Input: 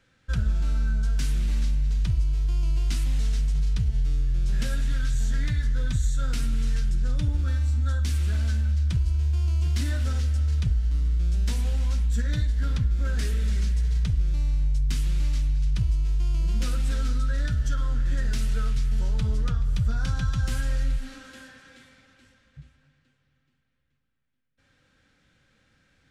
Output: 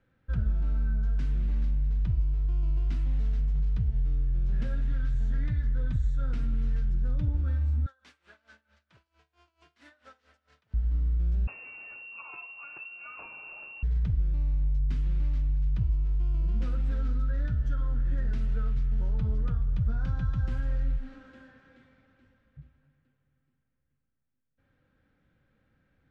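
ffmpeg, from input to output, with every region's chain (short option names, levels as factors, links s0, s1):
-filter_complex "[0:a]asettb=1/sr,asplit=3[s0][s1][s2];[s0]atrim=end=7.864[s3];[s1]atrim=start=7.86:end=10.74,asetpts=PTS-STARTPTS,afade=t=in:d=0.004:c=qsin,afade=t=out:st=2.876:d=0.004:c=qsin,highpass=800,aeval=exprs='val(0)*pow(10,-21*(0.5-0.5*cos(2*PI*4.5*n/s))/20)':c=same[s4];[s2]atrim=start=10.736[s5];[s3][s4]acrossfade=d=0.004:c1=hsin:c2=qsin[s6];[s6][s5]acrossfade=d=0.004:c1=qsin:c2=hsin,asettb=1/sr,asplit=3[s7][s8][s9];[s7]atrim=end=11.474[s10];[s8]atrim=start=11.47:end=13.83,asetpts=PTS-STARTPTS,afade=t=in:d=0.004:c=qsin,afade=t=out:st=2.356:d=0.004:c=qsin,highpass=f=150:p=1,equalizer=f=840:t=o:w=0.2:g=-8.5,lowpass=f=2400:t=q:w=0.5098,lowpass=f=2400:t=q:w=0.6013,lowpass=f=2400:t=q:w=0.9,lowpass=f=2400:t=q:w=2.563,afreqshift=-2800[s11];[s9]atrim=start=13.826[s12];[s10][s11]acrossfade=d=0.004:c1=hsin:c2=qsin[s13];[s13][s12]acrossfade=d=0.004:c1=qsin:c2=hsin,lowpass=f=1100:p=1,aemphasis=mode=reproduction:type=50kf,volume=0.708"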